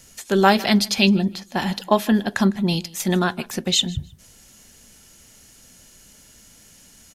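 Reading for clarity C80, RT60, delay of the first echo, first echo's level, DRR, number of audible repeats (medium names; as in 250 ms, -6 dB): no reverb, no reverb, 155 ms, -21.5 dB, no reverb, 1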